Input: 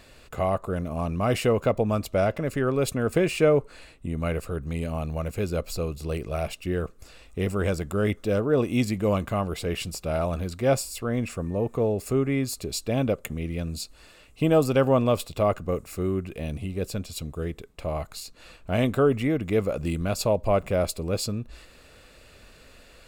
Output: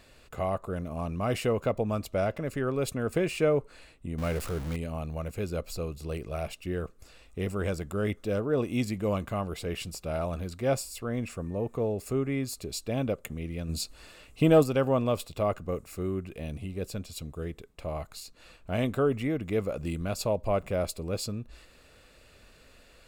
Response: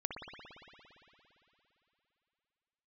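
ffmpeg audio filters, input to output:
-filter_complex "[0:a]asettb=1/sr,asplit=3[a][b][c];[a]atrim=end=4.184[d];[b]atrim=start=4.18:end=4.76,asetpts=PTS-STARTPTS,afade=t=in:d=0.004:c=qsin,afade=t=out:st=0.576:d=0.004:c=qsin,aeval=exprs='val(0)+0.5*0.0355*sgn(val(0))':c=same[e];[c]atrim=start=4.756[f];[d][e]acrossfade=d=0.004:c1=hsin:c2=qsin[g];[g][f]acrossfade=d=0.004:c1=qsin:c2=hsin,asplit=3[h][i][j];[h]afade=t=out:st=13.68:d=0.02[k];[i]acontrast=51,afade=t=in:st=13.68:d=0.02,afade=t=out:st=14.62:d=0.02[l];[j]afade=t=in:st=14.62:d=0.02[m];[k][l][m]amix=inputs=3:normalize=0,volume=-5dB"

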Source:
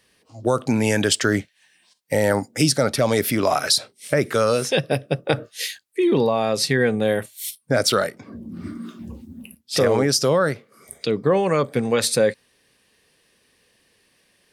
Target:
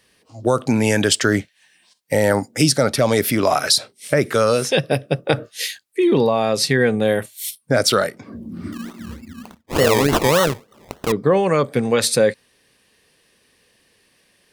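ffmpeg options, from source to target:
-filter_complex "[0:a]asettb=1/sr,asplit=3[a][b][c];[a]atrim=end=8.724[d];[b]atrim=start=8.72:end=11.12,asetpts=PTS-STARTPTS,afade=t=in:d=0.004:c=qsin,afade=t=out:st=2.396:d=0.004:c=qsin,acrusher=samples=25:mix=1:aa=0.000001:lfo=1:lforange=15:lforate=3.4[e];[c]atrim=start=11.116[f];[d][e]acrossfade=d=0.004:c1=hsin:c2=qsin[g];[g][f]acrossfade=d=0.004:c1=qsin:c2=hsin,volume=2.5dB"

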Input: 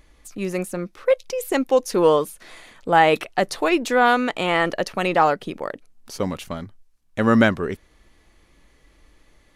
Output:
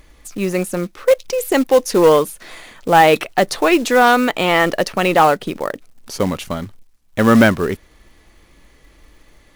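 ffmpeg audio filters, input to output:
-af "acontrast=66,acrusher=bits=5:mode=log:mix=0:aa=0.000001"

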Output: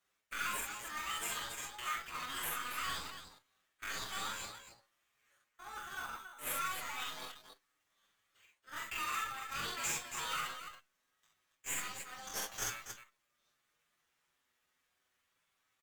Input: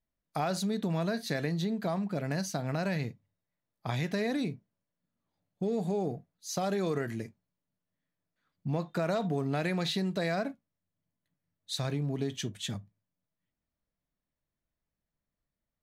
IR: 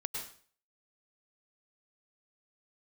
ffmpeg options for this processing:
-filter_complex "[0:a]alimiter=level_in=2.5dB:limit=-24dB:level=0:latency=1:release=100,volume=-2.5dB,areverse,acompressor=threshold=-46dB:ratio=8,areverse,highpass=f=770:w=0.5412,highpass=f=770:w=1.3066,asetrate=83250,aresample=44100,atempo=0.529732,highshelf=f=11k:g=-6,asplit=2[a][b];[b]acrusher=samples=9:mix=1:aa=0.000001,volume=-1dB[c];[a][c]amix=inputs=2:normalize=0,aecho=1:1:44|63|279:0.668|0.501|0.376,aeval=exprs='0.0075*(cos(1*acos(clip(val(0)/0.0075,-1,1)))-cos(1*PI/2))+0.00075*(cos(6*acos(clip(val(0)/0.0075,-1,1)))-cos(6*PI/2))':c=same,asplit=2[d][e];[e]adelay=7.3,afreqshift=0.25[f];[d][f]amix=inputs=2:normalize=1,volume=15dB"

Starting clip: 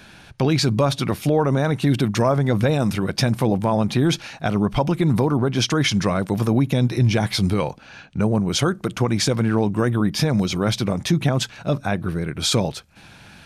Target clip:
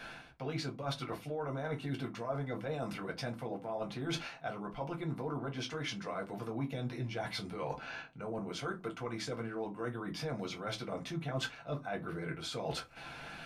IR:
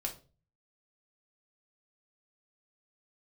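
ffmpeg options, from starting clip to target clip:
-filter_complex "[0:a]bass=f=250:g=-12,treble=f=4k:g=-9,areverse,acompressor=threshold=-36dB:ratio=16,areverse[a];[1:a]atrim=start_sample=2205,asetrate=83790,aresample=44100[b];[a][b]afir=irnorm=-1:irlink=0,volume=5.5dB"

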